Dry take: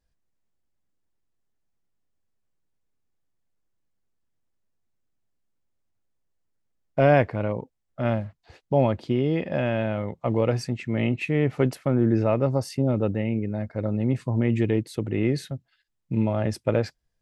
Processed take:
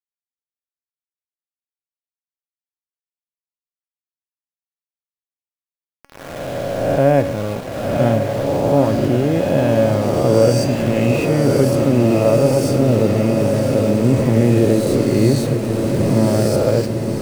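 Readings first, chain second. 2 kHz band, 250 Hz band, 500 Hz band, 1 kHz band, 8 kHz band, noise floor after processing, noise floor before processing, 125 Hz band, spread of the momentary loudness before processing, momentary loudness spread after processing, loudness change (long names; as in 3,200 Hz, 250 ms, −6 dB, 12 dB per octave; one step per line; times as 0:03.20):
+5.0 dB, +9.0 dB, +10.0 dB, +7.5 dB, can't be measured, below −85 dBFS, −76 dBFS, +8.0 dB, 9 LU, 7 LU, +9.0 dB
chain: peak hold with a rise ahead of every peak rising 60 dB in 1.75 s
drawn EQ curve 520 Hz 0 dB, 2,300 Hz −10 dB, 7,300 Hz +1 dB
automatic gain control gain up to 14 dB
centre clipping without the shift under −26 dBFS
tuned comb filter 280 Hz, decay 0.74 s, mix 70%
on a send: feedback delay with all-pass diffusion 1,032 ms, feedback 67%, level −6 dB
on the sum: level +7.5 dB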